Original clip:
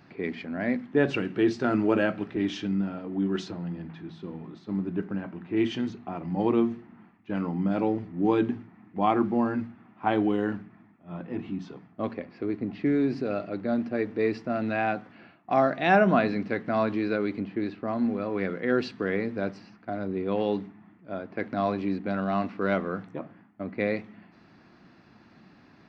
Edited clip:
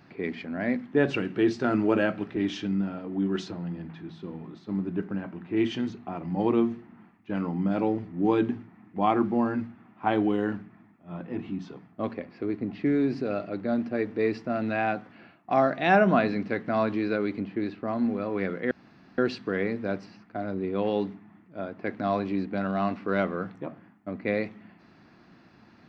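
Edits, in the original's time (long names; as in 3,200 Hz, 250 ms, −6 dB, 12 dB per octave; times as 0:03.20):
0:18.71: splice in room tone 0.47 s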